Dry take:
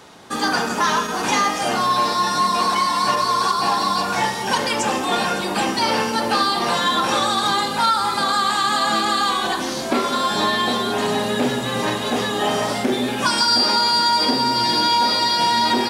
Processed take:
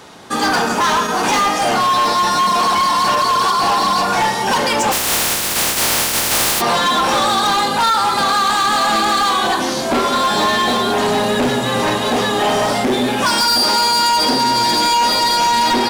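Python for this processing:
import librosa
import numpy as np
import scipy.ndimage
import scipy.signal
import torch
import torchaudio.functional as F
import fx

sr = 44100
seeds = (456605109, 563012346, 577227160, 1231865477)

y = fx.spec_flatten(x, sr, power=0.12, at=(4.91, 6.6), fade=0.02)
y = fx.dynamic_eq(y, sr, hz=760.0, q=1.1, threshold_db=-29.0, ratio=4.0, max_db=3)
y = np.clip(y, -10.0 ** (-17.0 / 20.0), 10.0 ** (-17.0 / 20.0))
y = y * librosa.db_to_amplitude(5.0)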